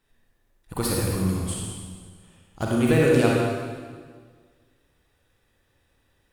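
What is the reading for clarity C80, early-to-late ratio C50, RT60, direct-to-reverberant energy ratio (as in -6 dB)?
0.5 dB, -2.0 dB, 1.6 s, -3.5 dB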